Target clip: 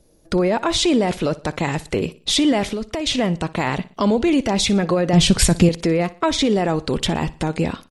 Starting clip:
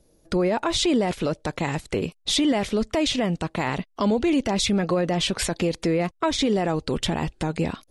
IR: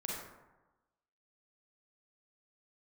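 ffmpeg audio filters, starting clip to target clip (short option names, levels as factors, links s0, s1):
-filter_complex "[0:a]asettb=1/sr,asplit=3[s0][s1][s2];[s0]atrim=end=2.674[s3];[s1]atrim=start=2.67:end=3.07,asetpts=PTS-STARTPTS,afade=t=in:d=0.004:c=qsin,afade=t=out:st=0.396:d=0.004:c=qsin,acompressor=threshold=0.0447:ratio=4[s4];[s2]atrim=start=3.066[s5];[s3][s4]acrossfade=d=0.004:c1=hsin:c2=qsin[s6];[s6][s5]acrossfade=d=0.004:c1=qsin:c2=hsin,asettb=1/sr,asplit=3[s7][s8][s9];[s7]atrim=end=5.134[s10];[s8]atrim=start=5.13:end=5.69,asetpts=PTS-STARTPTS,afade=t=in:d=0.004:c=qsin,afade=t=out:st=0.556:d=0.004:c=qsin,bass=f=250:g=13,treble=f=4000:g=6[s11];[s9]atrim=start=5.686[s12];[s10][s11]acrossfade=d=0.004:c1=hsin:c2=qsin[s13];[s13][s12]acrossfade=d=0.004:c1=qsin:c2=hsin,aecho=1:1:60|120|180:0.112|0.0449|0.018,volume=1.58"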